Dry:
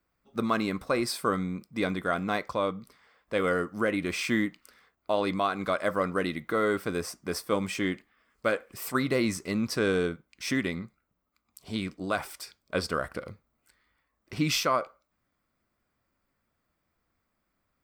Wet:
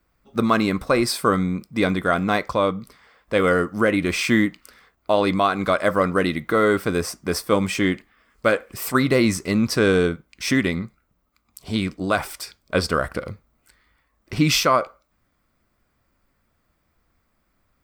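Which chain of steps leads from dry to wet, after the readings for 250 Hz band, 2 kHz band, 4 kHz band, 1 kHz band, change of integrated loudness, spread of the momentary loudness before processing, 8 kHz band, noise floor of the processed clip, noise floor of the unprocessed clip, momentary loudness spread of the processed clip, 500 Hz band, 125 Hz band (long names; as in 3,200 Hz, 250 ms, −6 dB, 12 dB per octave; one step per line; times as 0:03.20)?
+8.5 dB, +8.0 dB, +8.0 dB, +8.0 dB, +8.5 dB, 10 LU, +8.0 dB, −69 dBFS, −79 dBFS, 10 LU, +8.0 dB, +10.0 dB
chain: low-shelf EQ 74 Hz +8.5 dB
level +8 dB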